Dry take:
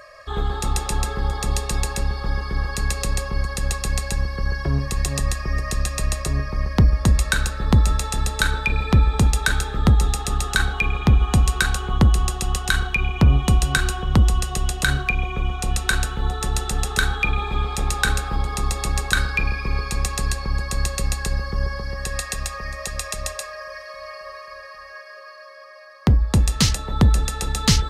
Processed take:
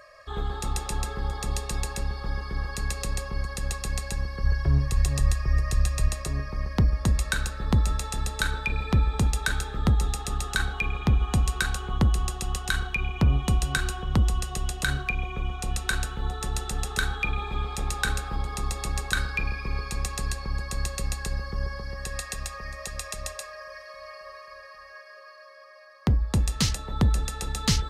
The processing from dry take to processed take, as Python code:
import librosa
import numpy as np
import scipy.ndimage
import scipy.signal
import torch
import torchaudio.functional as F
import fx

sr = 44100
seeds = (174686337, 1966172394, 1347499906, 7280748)

y = fx.low_shelf_res(x, sr, hz=150.0, db=6.5, q=1.5, at=(4.44, 6.08))
y = y * 10.0 ** (-6.5 / 20.0)